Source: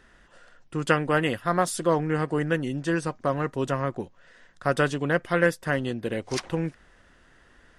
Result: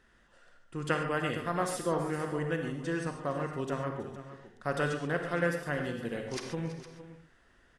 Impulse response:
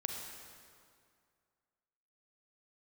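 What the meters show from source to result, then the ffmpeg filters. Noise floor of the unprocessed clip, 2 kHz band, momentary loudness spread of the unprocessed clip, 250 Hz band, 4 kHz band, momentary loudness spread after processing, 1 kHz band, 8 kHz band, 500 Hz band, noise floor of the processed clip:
-58 dBFS, -7.0 dB, 8 LU, -7.5 dB, -7.0 dB, 13 LU, -7.0 dB, -7.0 dB, -7.0 dB, -65 dBFS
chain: -filter_complex "[0:a]aecho=1:1:321|335|461:0.106|0.126|0.188[a];[1:a]atrim=start_sample=2205,atrim=end_sample=6615[b];[a][b]afir=irnorm=-1:irlink=0,volume=-7.5dB"

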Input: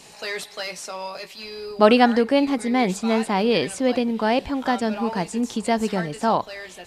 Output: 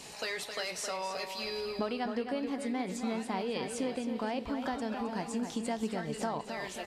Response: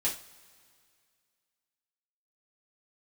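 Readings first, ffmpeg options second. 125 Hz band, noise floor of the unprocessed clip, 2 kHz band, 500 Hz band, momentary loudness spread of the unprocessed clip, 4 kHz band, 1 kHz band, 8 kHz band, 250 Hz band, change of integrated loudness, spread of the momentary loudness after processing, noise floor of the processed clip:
-12.5 dB, -45 dBFS, -12.0 dB, -14.0 dB, 16 LU, -10.0 dB, -14.0 dB, -6.5 dB, -13.0 dB, -13.5 dB, 2 LU, -45 dBFS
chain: -filter_complex "[0:a]acompressor=threshold=-32dB:ratio=6,asplit=2[a][b];[b]adelay=265,lowpass=f=4.9k:p=1,volume=-7dB,asplit=2[c][d];[d]adelay=265,lowpass=f=4.9k:p=1,volume=0.43,asplit=2[e][f];[f]adelay=265,lowpass=f=4.9k:p=1,volume=0.43,asplit=2[g][h];[h]adelay=265,lowpass=f=4.9k:p=1,volume=0.43,asplit=2[i][j];[j]adelay=265,lowpass=f=4.9k:p=1,volume=0.43[k];[a][c][e][g][i][k]amix=inputs=6:normalize=0,asplit=2[l][m];[1:a]atrim=start_sample=2205[n];[m][n]afir=irnorm=-1:irlink=0,volume=-18dB[o];[l][o]amix=inputs=2:normalize=0,volume=-2dB"

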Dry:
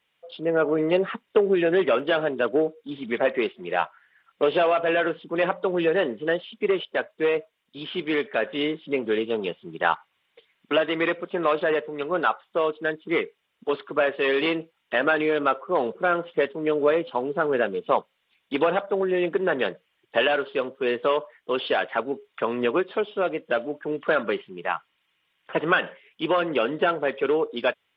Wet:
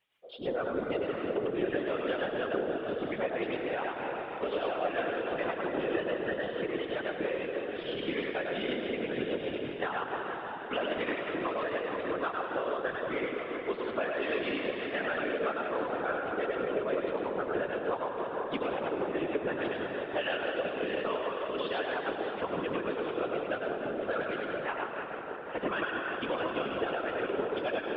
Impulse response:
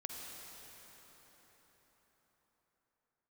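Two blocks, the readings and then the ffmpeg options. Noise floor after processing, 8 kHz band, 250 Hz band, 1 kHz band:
-40 dBFS, n/a, -7.5 dB, -7.5 dB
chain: -filter_complex "[0:a]asplit=2[a][b];[1:a]atrim=start_sample=2205,lowshelf=f=150:g=-4,adelay=101[c];[b][c]afir=irnorm=-1:irlink=0,volume=2.5dB[d];[a][d]amix=inputs=2:normalize=0,tremolo=f=6.2:d=0.33,acompressor=threshold=-24dB:ratio=3,afftfilt=real='hypot(re,im)*cos(2*PI*random(0))':imag='hypot(re,im)*sin(2*PI*random(1))':win_size=512:overlap=0.75"

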